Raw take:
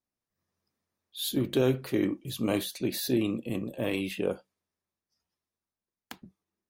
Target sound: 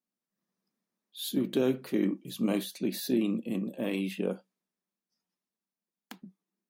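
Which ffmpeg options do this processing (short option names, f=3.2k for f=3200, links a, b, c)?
-af "lowshelf=f=130:t=q:w=3:g=-13,volume=-4dB"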